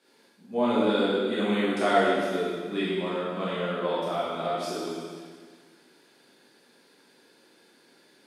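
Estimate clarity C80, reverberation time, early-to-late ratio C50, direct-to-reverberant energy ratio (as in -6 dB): -0.5 dB, 1.7 s, -2.5 dB, -9.5 dB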